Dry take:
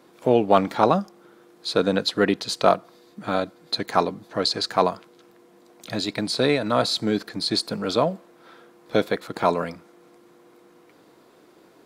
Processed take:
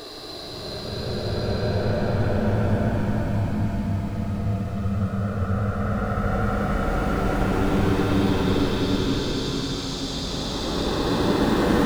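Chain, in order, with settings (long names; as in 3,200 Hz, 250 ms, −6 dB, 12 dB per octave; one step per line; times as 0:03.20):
sub-harmonics by changed cycles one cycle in 2, muted
spectral tilt −2 dB per octave
flanger swept by the level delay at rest 11.4 ms, full sweep at −18 dBFS
extreme stretch with random phases 39×, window 0.10 s, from 0:07.67
level +7 dB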